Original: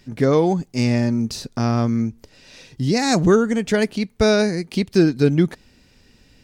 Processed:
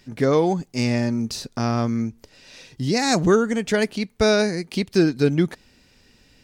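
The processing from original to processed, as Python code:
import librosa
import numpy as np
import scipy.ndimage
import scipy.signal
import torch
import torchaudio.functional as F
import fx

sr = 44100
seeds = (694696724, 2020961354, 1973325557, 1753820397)

y = fx.low_shelf(x, sr, hz=340.0, db=-4.5)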